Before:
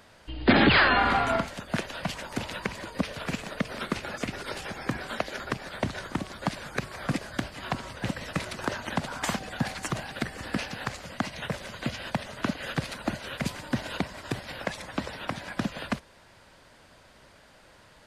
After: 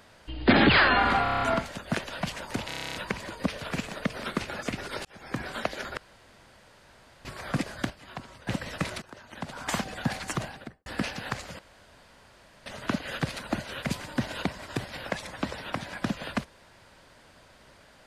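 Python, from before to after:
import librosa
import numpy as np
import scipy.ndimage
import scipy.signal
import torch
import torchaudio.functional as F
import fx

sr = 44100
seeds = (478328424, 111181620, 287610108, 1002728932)

y = fx.studio_fade_out(x, sr, start_s=9.91, length_s=0.5)
y = fx.edit(y, sr, fx.stutter(start_s=1.23, slice_s=0.03, count=7),
    fx.stutter(start_s=2.49, slice_s=0.03, count=10),
    fx.fade_in_span(start_s=4.6, length_s=0.41),
    fx.room_tone_fill(start_s=5.52, length_s=1.28),
    fx.clip_gain(start_s=7.45, length_s=0.57, db=-9.0),
    fx.fade_in_from(start_s=8.57, length_s=0.72, curve='qua', floor_db=-18.0),
    fx.room_tone_fill(start_s=11.14, length_s=1.07), tone=tone)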